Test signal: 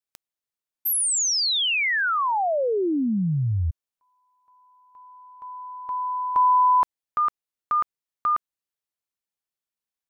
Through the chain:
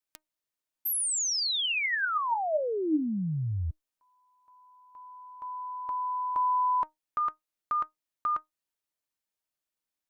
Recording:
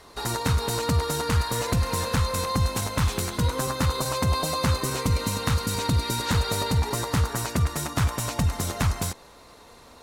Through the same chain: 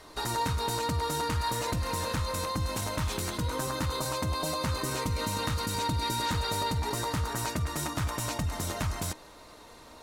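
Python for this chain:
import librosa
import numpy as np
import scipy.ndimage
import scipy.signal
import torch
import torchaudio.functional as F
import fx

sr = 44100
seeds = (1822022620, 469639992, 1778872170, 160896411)

p1 = fx.over_compress(x, sr, threshold_db=-31.0, ratio=-1.0)
p2 = x + (p1 * librosa.db_to_amplitude(-3.0))
y = fx.comb_fb(p2, sr, f0_hz=310.0, decay_s=0.18, harmonics='all', damping=0.6, mix_pct=70)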